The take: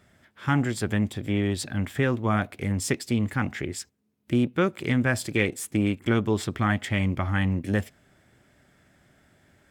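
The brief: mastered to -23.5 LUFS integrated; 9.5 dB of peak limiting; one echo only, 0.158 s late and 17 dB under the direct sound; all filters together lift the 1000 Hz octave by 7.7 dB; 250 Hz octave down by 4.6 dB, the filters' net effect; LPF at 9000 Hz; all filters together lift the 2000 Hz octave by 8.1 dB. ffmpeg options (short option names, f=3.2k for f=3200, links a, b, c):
-af "lowpass=9k,equalizer=f=250:t=o:g=-6.5,equalizer=f=1k:t=o:g=8,equalizer=f=2k:t=o:g=7.5,alimiter=limit=-11.5dB:level=0:latency=1,aecho=1:1:158:0.141,volume=3dB"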